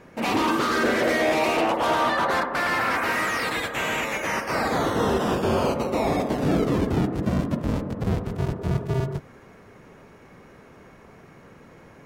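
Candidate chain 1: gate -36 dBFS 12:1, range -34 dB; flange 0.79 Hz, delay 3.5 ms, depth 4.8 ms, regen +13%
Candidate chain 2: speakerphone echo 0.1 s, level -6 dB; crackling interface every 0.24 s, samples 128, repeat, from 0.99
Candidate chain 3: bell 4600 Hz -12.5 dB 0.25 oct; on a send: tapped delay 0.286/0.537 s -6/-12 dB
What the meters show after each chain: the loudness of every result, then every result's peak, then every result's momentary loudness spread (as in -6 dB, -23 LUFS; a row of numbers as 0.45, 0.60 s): -27.0, -23.5, -23.0 LUFS; -13.0, -9.5, -10.0 dBFS; 6, 6, 6 LU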